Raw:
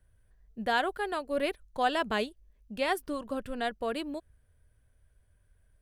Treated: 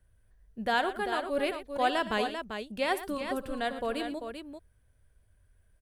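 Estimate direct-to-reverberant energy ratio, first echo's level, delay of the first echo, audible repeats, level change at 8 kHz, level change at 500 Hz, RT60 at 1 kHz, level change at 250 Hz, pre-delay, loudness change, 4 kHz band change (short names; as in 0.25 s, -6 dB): none, -19.0 dB, 60 ms, 3, +1.0 dB, +1.0 dB, none, +1.0 dB, none, +0.5 dB, +1.0 dB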